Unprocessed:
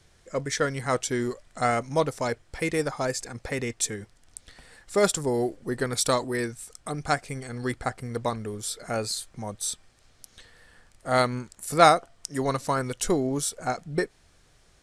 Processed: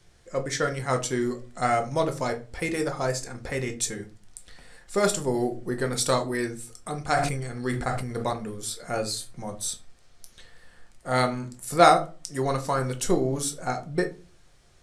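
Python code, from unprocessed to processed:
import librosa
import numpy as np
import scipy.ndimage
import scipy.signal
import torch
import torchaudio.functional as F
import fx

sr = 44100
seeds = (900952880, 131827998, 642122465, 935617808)

y = fx.room_shoebox(x, sr, seeds[0], volume_m3=170.0, walls='furnished', distance_m=0.91)
y = fx.sustainer(y, sr, db_per_s=41.0, at=(7.1, 8.33))
y = y * librosa.db_to_amplitude(-1.5)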